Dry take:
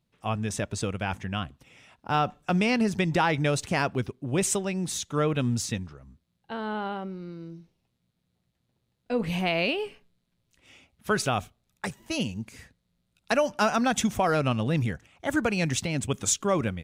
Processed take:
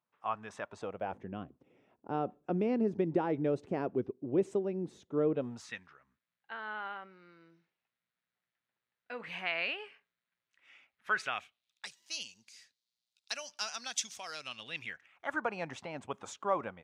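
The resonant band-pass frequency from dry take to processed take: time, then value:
resonant band-pass, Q 1.9
0:00.65 1,100 Hz
0:01.29 370 Hz
0:05.31 370 Hz
0:05.73 1,700 Hz
0:11.20 1,700 Hz
0:12.00 5,000 Hz
0:14.42 5,000 Hz
0:15.49 900 Hz

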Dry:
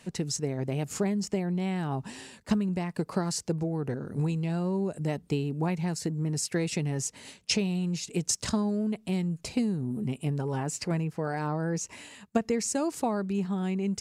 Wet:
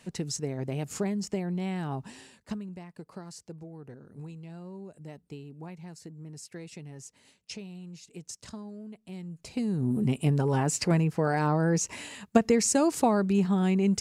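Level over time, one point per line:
0:01.90 −2 dB
0:02.93 −14 dB
0:09.01 −14 dB
0:09.49 −7 dB
0:09.86 +5 dB

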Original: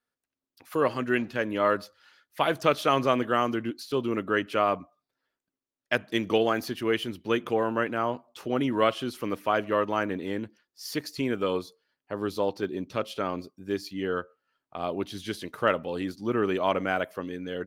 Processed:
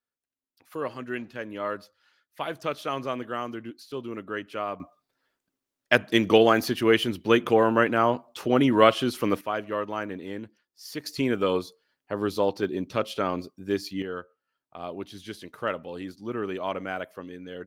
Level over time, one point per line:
−7 dB
from 0:04.80 +6 dB
from 0:09.41 −4 dB
from 0:11.06 +3 dB
from 0:14.02 −5 dB

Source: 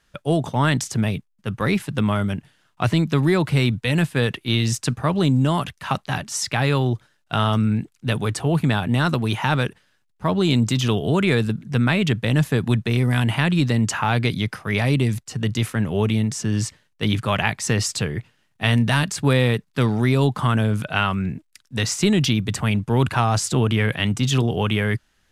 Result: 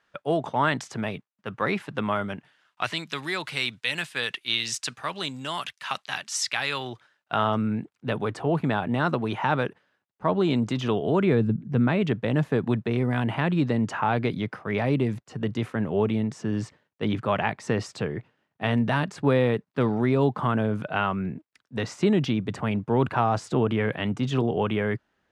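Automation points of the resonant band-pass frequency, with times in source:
resonant band-pass, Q 0.57
0:02.34 970 Hz
0:03.01 3,400 Hz
0:06.68 3,400 Hz
0:07.50 630 Hz
0:11.13 630 Hz
0:11.52 180 Hz
0:12.00 520 Hz

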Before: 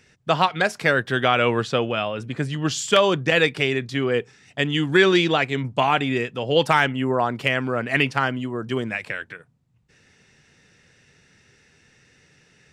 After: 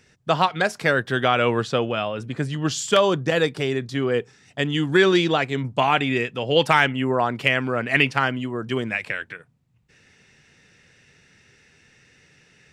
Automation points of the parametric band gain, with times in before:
parametric band 2,400 Hz 0.93 octaves
0:02.83 −2.5 dB
0:03.49 −10.5 dB
0:04.12 −3.5 dB
0:05.61 −3.5 dB
0:06.01 +3 dB

